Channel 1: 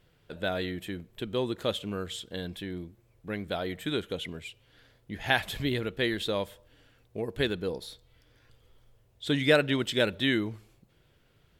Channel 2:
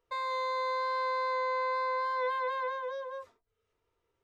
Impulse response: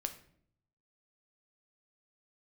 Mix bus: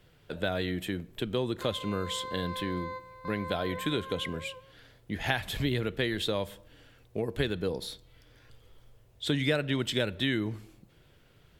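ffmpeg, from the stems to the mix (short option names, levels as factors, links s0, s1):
-filter_complex "[0:a]volume=1.33,asplit=3[s0][s1][s2];[s1]volume=0.224[s3];[1:a]adelay=1500,volume=0.422[s4];[s2]apad=whole_len=253044[s5];[s4][s5]sidechaingate=range=0.251:threshold=0.00316:ratio=16:detection=peak[s6];[2:a]atrim=start_sample=2205[s7];[s3][s7]afir=irnorm=-1:irlink=0[s8];[s0][s6][s8]amix=inputs=3:normalize=0,acrossover=split=130[s9][s10];[s10]acompressor=threshold=0.0398:ratio=3[s11];[s9][s11]amix=inputs=2:normalize=0"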